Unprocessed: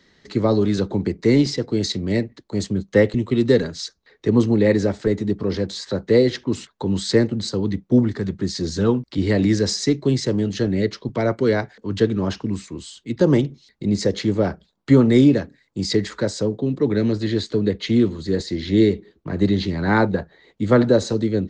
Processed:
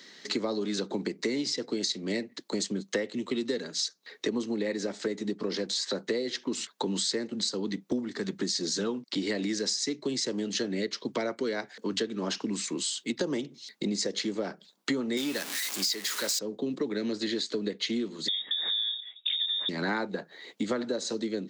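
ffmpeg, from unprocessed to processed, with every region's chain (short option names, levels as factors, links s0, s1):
-filter_complex "[0:a]asettb=1/sr,asplit=3[s0][s1][s2];[s0]atrim=end=15.174[s3];[s1]atrim=start=15.17:end=16.39,asetpts=PTS-STARTPTS,afade=t=in:d=0.004:c=qsin,afade=t=out:st=1.216:d=0.004:c=qsin,aeval=exprs='val(0)+0.5*0.0398*sgn(val(0))':c=same,tiltshelf=f=700:g=-6.5[s4];[s2]atrim=start=16.386[s5];[s3][s4]acrossfade=d=0.004:c1=hsin:c2=qsin[s6];[s6][s5]acrossfade=d=0.004:c1=qsin:c2=hsin,asettb=1/sr,asplit=3[s7][s8][s9];[s7]atrim=end=18.284[s10];[s8]atrim=start=18.28:end=19.69,asetpts=PTS-STARTPTS,afade=t=in:d=0.004:c=qsin,afade=t=out:st=1.406:d=0.004:c=qsin,lowpass=f=3200:t=q:w=0.5098,lowpass=f=3200:t=q:w=0.6013,lowpass=f=3200:t=q:w=0.9,lowpass=f=3200:t=q:w=2.563,afreqshift=-3800,acompressor=threshold=0.0398:ratio=2.5:attack=3.2:release=140:knee=1:detection=peak[s11];[s9]atrim=start=19.686[s12];[s10][s11]acrossfade=d=0.004:c1=hsin:c2=qsin[s13];[s13][s12]acrossfade=d=0.004:c1=qsin:c2=hsin,highpass=f=200:w=0.5412,highpass=f=200:w=1.3066,highshelf=f=2400:g=11.5,acompressor=threshold=0.0355:ratio=10,volume=1.19"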